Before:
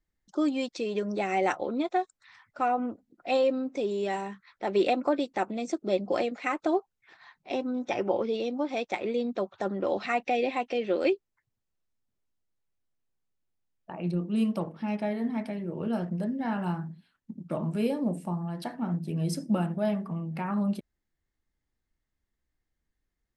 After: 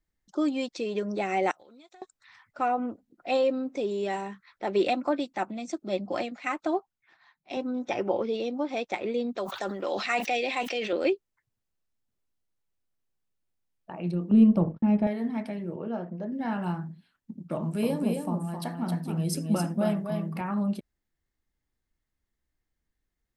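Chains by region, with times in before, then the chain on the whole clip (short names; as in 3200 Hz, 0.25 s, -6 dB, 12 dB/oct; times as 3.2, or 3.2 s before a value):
1.51–2.02 pre-emphasis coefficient 0.9 + compressor 12:1, threshold -49 dBFS
4.88–7.57 bell 450 Hz -9.5 dB 0.42 oct + three-band expander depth 40%
9.37–10.93 HPF 130 Hz + tilt +3 dB/oct + sustainer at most 54 dB/s
14.31–15.07 tilt -4 dB/oct + gate -37 dBFS, range -41 dB
15.76–16.32 careless resampling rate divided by 3×, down none, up filtered + band-pass 630 Hz, Q 0.54
17.56–20.41 high shelf 9200 Hz +12 dB + echo 0.266 s -5 dB
whole clip: dry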